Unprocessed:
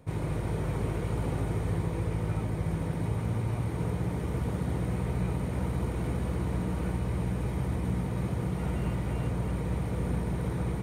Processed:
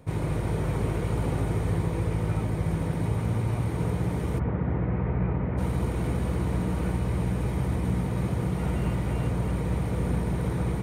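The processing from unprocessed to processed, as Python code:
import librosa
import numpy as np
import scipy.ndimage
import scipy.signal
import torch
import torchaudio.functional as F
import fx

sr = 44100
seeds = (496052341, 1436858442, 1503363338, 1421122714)

y = fx.lowpass(x, sr, hz=2200.0, slope=24, at=(4.38, 5.57), fade=0.02)
y = y * librosa.db_to_amplitude(3.5)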